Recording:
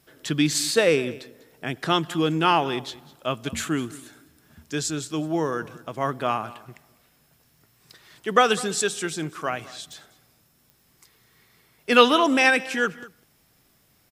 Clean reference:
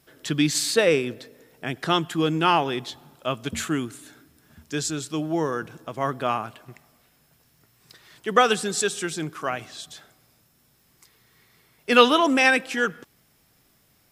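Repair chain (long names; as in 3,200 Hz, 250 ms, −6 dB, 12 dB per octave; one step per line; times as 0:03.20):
click removal
echo removal 204 ms −19.5 dB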